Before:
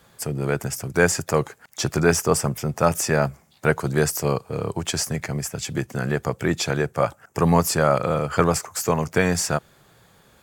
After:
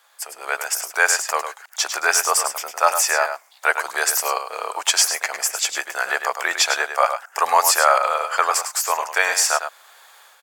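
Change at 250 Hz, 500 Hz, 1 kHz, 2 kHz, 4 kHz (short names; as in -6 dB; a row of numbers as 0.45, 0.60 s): -24.5, -4.0, +7.0, +7.0, +8.0 dB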